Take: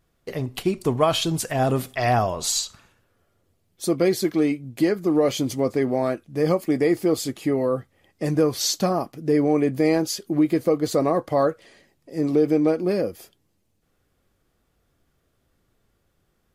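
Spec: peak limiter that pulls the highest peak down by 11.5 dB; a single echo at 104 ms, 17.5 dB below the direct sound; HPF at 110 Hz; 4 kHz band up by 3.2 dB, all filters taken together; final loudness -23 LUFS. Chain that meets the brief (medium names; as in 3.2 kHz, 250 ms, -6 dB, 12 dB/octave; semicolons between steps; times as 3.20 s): high-pass 110 Hz; peaking EQ 4 kHz +4 dB; peak limiter -17 dBFS; delay 104 ms -17.5 dB; trim +4 dB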